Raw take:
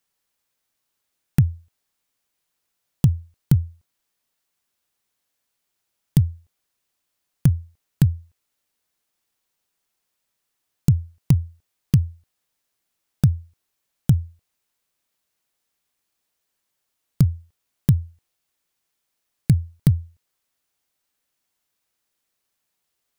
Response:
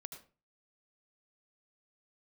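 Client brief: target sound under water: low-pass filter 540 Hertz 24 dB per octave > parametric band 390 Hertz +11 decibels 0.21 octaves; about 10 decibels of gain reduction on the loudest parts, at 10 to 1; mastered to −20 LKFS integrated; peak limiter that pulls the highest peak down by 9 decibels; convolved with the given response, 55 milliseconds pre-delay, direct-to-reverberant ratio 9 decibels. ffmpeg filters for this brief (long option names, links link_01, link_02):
-filter_complex "[0:a]acompressor=threshold=-21dB:ratio=10,alimiter=limit=-16dB:level=0:latency=1,asplit=2[link_01][link_02];[1:a]atrim=start_sample=2205,adelay=55[link_03];[link_02][link_03]afir=irnorm=-1:irlink=0,volume=-4.5dB[link_04];[link_01][link_04]amix=inputs=2:normalize=0,lowpass=frequency=540:width=0.5412,lowpass=frequency=540:width=1.3066,equalizer=frequency=390:width_type=o:width=0.21:gain=11,volume=16dB"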